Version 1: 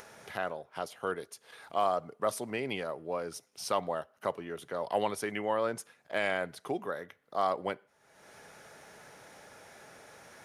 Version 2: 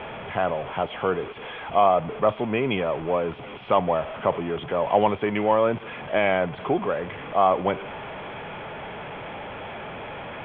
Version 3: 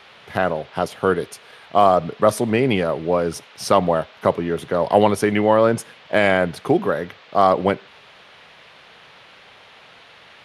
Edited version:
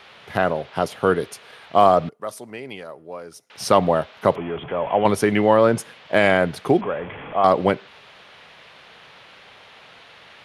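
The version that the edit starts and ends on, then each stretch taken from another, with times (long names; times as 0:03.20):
3
0:02.09–0:03.50: punch in from 1
0:04.36–0:05.05: punch in from 2
0:06.81–0:07.44: punch in from 2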